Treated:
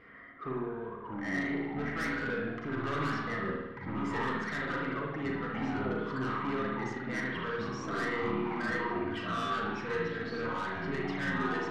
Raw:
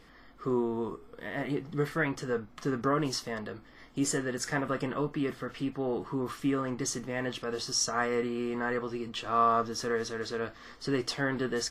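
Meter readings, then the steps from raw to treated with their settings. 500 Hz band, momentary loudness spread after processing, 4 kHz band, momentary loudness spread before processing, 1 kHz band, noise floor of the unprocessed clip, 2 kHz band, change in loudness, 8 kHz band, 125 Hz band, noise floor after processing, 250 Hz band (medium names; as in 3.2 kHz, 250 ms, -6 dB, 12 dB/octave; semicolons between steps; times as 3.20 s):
-4.0 dB, 4 LU, -7.5 dB, 8 LU, -2.0 dB, -55 dBFS, +2.0 dB, -2.5 dB, -19.5 dB, -1.0 dB, -44 dBFS, -2.0 dB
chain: reverb removal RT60 1.5 s; dynamic bell 660 Hz, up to -5 dB, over -41 dBFS, Q 0.76; in parallel at -2.5 dB: peak limiter -27 dBFS, peak gain reduction 9 dB; on the sum: resonant low-pass 1.9 kHz, resonance Q 2.9; comb of notches 860 Hz; saturation -27.5 dBFS, distortion -10 dB; ever faster or slower copies 520 ms, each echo -4 st, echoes 2; flutter echo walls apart 6.6 m, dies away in 0.26 s; spring tank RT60 1.1 s, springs 53 ms, chirp 25 ms, DRR -1 dB; trim -6 dB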